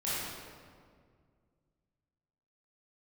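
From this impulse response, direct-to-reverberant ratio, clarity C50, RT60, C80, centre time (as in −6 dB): −11.0 dB, −4.5 dB, 2.0 s, −1.5 dB, 136 ms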